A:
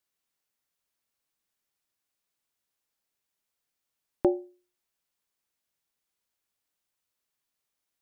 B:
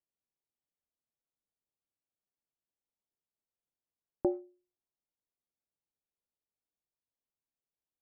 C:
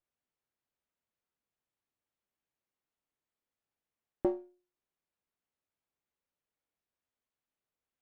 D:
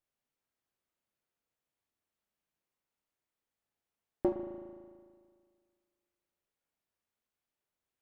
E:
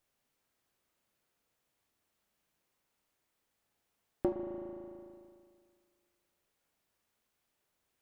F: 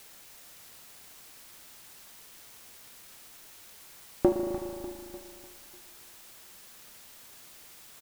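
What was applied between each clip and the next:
Wiener smoothing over 25 samples; LPF 1100 Hz 12 dB/oct; gain -6 dB
running maximum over 9 samples
spring tank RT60 1.9 s, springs 37 ms, chirp 45 ms, DRR 4.5 dB
compressor 1.5:1, threshold -57 dBFS, peak gain reduction 11.5 dB; gain +9 dB
in parallel at -10.5 dB: requantised 8-bit, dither triangular; on the sum: feedback echo 0.298 s, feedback 48%, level -11 dB; gain +6.5 dB

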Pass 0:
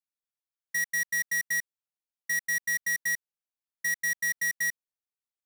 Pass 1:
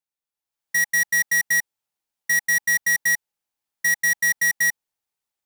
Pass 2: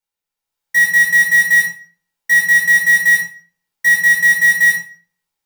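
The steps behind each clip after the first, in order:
bell 840 Hz +7 dB 0.23 oct; AGC gain up to 8.5 dB
reverb RT60 0.45 s, pre-delay 10 ms, DRR -3.5 dB

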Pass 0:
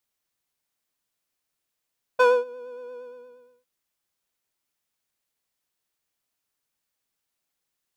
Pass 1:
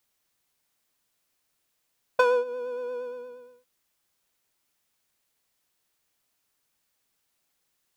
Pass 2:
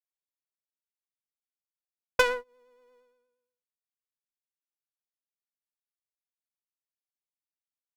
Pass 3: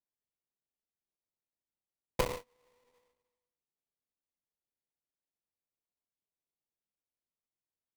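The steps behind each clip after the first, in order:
compressor 12:1, threshold -24 dBFS, peak gain reduction 10.5 dB; gain +6 dB
high shelf 2700 Hz +9 dB; added harmonics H 7 -17 dB, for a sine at -5 dBFS
flange 0.99 Hz, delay 8.2 ms, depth 2.6 ms, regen -60%; sample-rate reducer 1500 Hz, jitter 20%; gain -5.5 dB

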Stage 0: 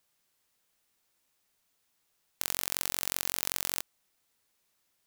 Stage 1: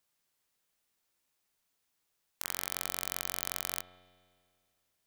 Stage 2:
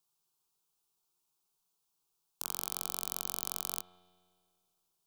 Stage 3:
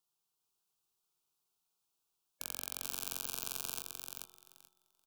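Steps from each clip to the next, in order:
spring tank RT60 2.1 s, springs 33 ms, chirp 70 ms, DRR 14 dB; dynamic EQ 1200 Hz, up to +5 dB, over -56 dBFS, Q 1.1; gain -4.5 dB
fixed phaser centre 380 Hz, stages 8
bin magnitudes rounded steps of 30 dB; on a send: feedback echo 0.433 s, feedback 16%, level -4 dB; on the sum: gain -4 dB

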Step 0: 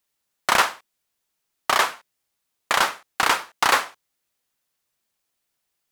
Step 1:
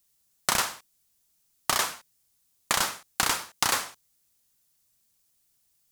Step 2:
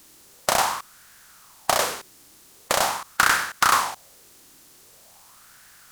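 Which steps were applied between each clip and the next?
tone controls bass +12 dB, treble +12 dB; compressor 6:1, threshold -18 dBFS, peak gain reduction 8.5 dB; gain -3 dB
per-bin compression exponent 0.6; LFO bell 0.44 Hz 310–1600 Hz +13 dB; gain -1 dB

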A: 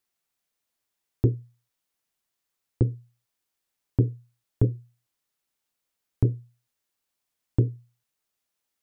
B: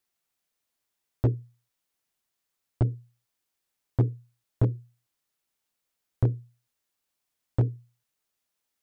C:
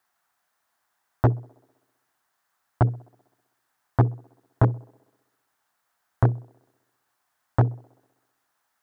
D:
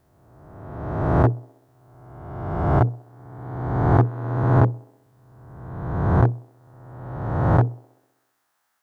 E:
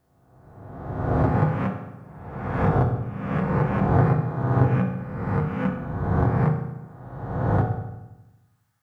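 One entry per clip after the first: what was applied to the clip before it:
hard clip -15 dBFS, distortion -13 dB
HPF 46 Hz; band shelf 1100 Hz +12.5 dB; band-limited delay 64 ms, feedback 67%, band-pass 440 Hz, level -23 dB; gain +4 dB
spectral swells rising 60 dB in 1.47 s
echoes that change speed 0.437 s, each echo +4 st, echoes 2; on a send at -1 dB: reverb RT60 1.0 s, pre-delay 3 ms; on the sum: gain -6 dB

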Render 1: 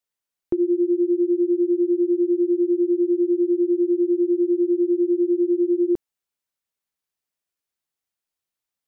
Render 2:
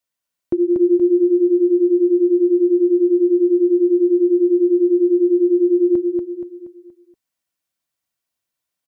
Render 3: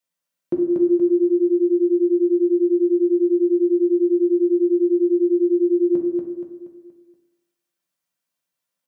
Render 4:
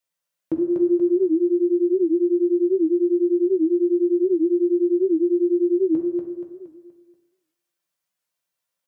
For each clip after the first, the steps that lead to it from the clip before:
notch comb 420 Hz; on a send: feedback echo 0.237 s, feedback 42%, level -4 dB; on the sum: gain +4.5 dB
HPF 120 Hz; on a send at -1.5 dB: reverb RT60 1.1 s, pre-delay 3 ms; on the sum: gain -2 dB
bell 230 Hz -13.5 dB 0.4 oct; record warp 78 rpm, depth 160 cents

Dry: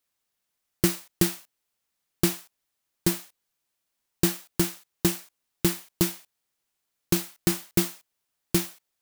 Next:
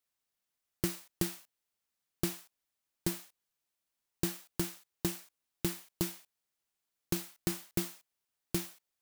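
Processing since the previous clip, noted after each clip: compressor 2:1, threshold -24 dBFS, peak gain reduction 5 dB; gain -6.5 dB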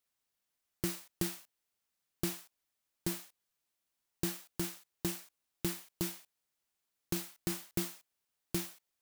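limiter -19 dBFS, peak gain reduction 5.5 dB; gain +1 dB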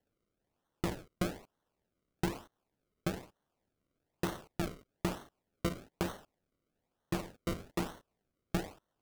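decimation with a swept rate 35×, swing 100% 1.1 Hz; gain +1 dB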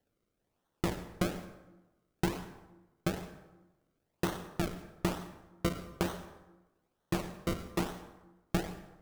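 plate-style reverb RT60 1.1 s, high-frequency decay 0.6×, pre-delay 80 ms, DRR 12 dB; gain +2.5 dB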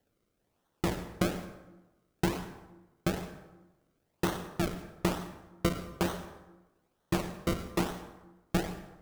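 one diode to ground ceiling -20.5 dBFS; gain +4 dB

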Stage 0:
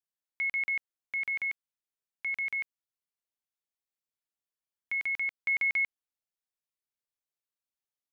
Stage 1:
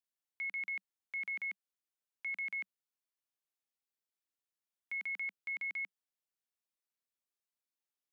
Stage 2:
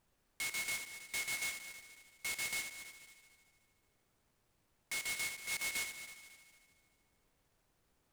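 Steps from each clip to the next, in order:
Chebyshev high-pass 190 Hz, order 5; limiter -32 dBFS, peak gain reduction 9 dB; gain -2.5 dB
added noise pink -77 dBFS; on a send: multi-head echo 75 ms, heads first and third, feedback 56%, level -12.5 dB; on the sum: noise-modulated delay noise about 5600 Hz, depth 0.061 ms

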